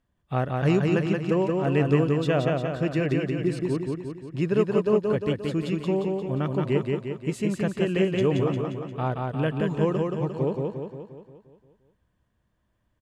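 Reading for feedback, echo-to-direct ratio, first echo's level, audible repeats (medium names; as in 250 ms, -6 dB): 55%, -1.5 dB, -3.0 dB, 7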